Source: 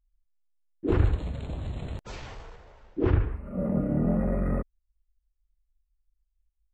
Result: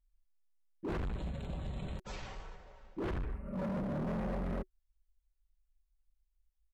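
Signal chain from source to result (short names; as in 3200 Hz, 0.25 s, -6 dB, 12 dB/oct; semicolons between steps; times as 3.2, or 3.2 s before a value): notch 370 Hz, Q 12; comb 5.3 ms, depth 47%; hard clip -29.5 dBFS, distortion -5 dB; gain -4.5 dB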